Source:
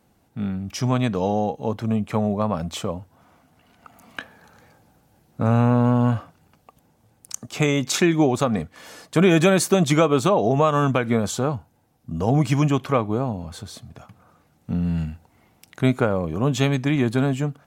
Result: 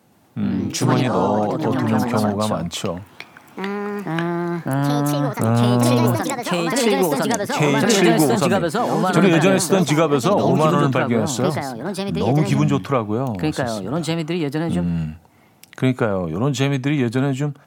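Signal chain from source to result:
high-pass filter 94 Hz 24 dB per octave
in parallel at +1 dB: downward compressor, threshold −28 dBFS, peak gain reduction 15.5 dB
on the sum: delay with pitch and tempo change per echo 122 ms, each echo +3 semitones, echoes 3
level −1 dB

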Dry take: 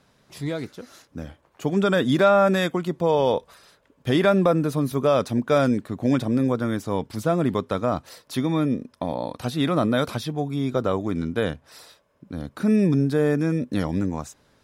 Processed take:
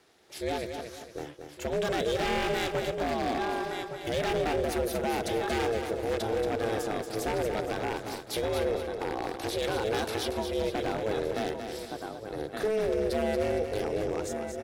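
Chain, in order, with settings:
single-tap delay 1,164 ms −13 dB
brickwall limiter −17 dBFS, peak gain reduction 9 dB
ring modulation 220 Hz
high-pass filter 310 Hz 6 dB per octave
wave folding −25.5 dBFS
parametric band 1,100 Hz −5.5 dB 0.62 octaves
repeating echo 231 ms, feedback 38%, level −7 dB
level +3.5 dB

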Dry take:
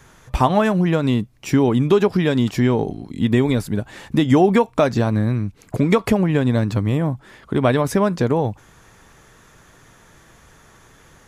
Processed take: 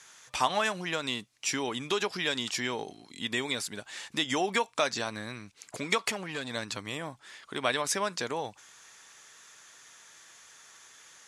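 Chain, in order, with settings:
meter weighting curve ITU-R 468
0:05.98–0:06.51: saturating transformer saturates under 3,200 Hz
level −8.5 dB

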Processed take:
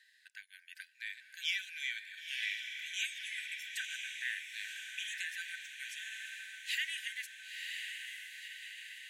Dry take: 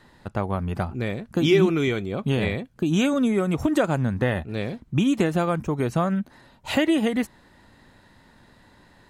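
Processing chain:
linear-phase brick-wall high-pass 1,500 Hz
on a send: feedback delay with all-pass diffusion 991 ms, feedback 60%, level −4 dB
on the sum: level −6.5 dB

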